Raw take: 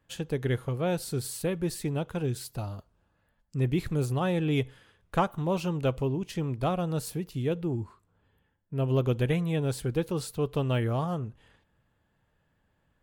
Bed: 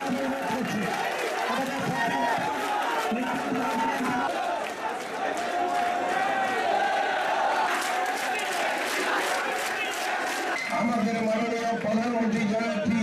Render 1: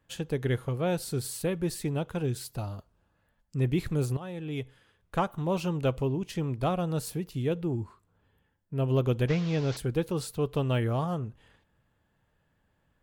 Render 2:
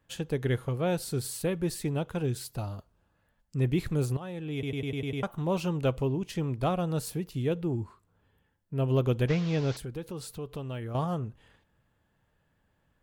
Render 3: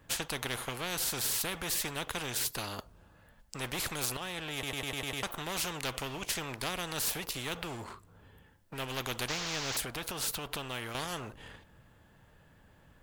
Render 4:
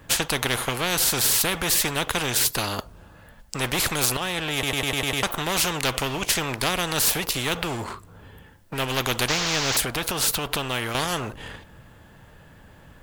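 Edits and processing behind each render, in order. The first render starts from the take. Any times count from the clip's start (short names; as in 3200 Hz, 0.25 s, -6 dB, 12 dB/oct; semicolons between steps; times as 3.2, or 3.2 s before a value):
4.17–5.61 fade in, from -14 dB; 9.28–9.77 delta modulation 32 kbps, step -36.5 dBFS
4.53 stutter in place 0.10 s, 7 plays; 9.72–10.95 compressor 2:1, threshold -40 dBFS
sample leveller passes 1; spectral compressor 4:1
gain +11.5 dB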